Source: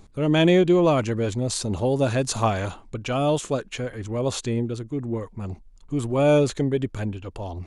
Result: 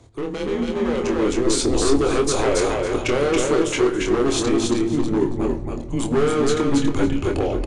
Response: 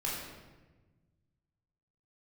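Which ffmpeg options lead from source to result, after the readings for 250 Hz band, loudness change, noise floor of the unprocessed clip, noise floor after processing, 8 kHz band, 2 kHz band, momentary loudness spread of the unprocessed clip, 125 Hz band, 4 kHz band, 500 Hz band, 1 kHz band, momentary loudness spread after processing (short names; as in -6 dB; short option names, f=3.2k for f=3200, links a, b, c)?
+4.0 dB, +2.5 dB, -50 dBFS, -29 dBFS, +6.5 dB, +4.0 dB, 14 LU, -3.5 dB, +4.0 dB, +3.0 dB, +2.0 dB, 6 LU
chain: -filter_complex "[0:a]alimiter=limit=-19.5dB:level=0:latency=1:release=27,equalizer=f=125:t=o:w=1:g=-12,equalizer=f=250:t=o:w=1:g=-11,equalizer=f=500:t=o:w=1:g=11,afreqshift=-130,acompressor=threshold=-27dB:ratio=2,aeval=exprs='0.0668*(abs(mod(val(0)/0.0668+3,4)-2)-1)':c=same,aecho=1:1:278|556|834:0.708|0.135|0.0256,asplit=2[a][b];[1:a]atrim=start_sample=2205,lowshelf=f=350:g=11.5[c];[b][c]afir=irnorm=-1:irlink=0,volume=-16.5dB[d];[a][d]amix=inputs=2:normalize=0,aresample=22050,aresample=44100,bandreject=f=60:t=h:w=6,bandreject=f=120:t=h:w=6,dynaudnorm=f=720:g=3:m=7dB,asplit=2[e][f];[f]adelay=25,volume=-6dB[g];[e][g]amix=inputs=2:normalize=0"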